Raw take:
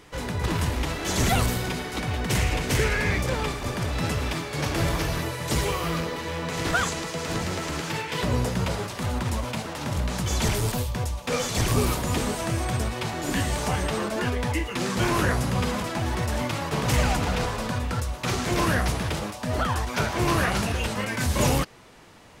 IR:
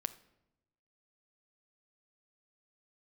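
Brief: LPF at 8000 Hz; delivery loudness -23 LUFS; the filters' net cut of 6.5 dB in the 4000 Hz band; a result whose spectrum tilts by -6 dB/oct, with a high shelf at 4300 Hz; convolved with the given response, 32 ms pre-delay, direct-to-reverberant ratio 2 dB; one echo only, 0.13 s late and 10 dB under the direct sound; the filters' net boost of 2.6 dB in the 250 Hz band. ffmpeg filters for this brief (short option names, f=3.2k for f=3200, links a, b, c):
-filter_complex "[0:a]lowpass=8k,equalizer=f=250:t=o:g=3.5,equalizer=f=4k:t=o:g=-4,highshelf=f=4.3k:g=-8,aecho=1:1:130:0.316,asplit=2[a][b];[1:a]atrim=start_sample=2205,adelay=32[c];[b][c]afir=irnorm=-1:irlink=0,volume=-1.5dB[d];[a][d]amix=inputs=2:normalize=0,volume=0.5dB"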